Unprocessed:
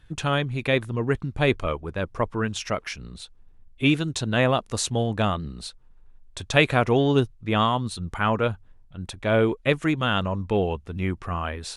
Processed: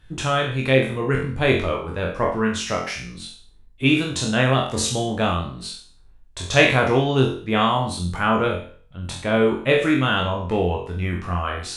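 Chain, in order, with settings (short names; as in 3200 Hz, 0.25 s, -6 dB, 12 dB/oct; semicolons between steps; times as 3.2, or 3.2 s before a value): spectral trails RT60 0.46 s; flutter echo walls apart 3.9 m, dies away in 0.33 s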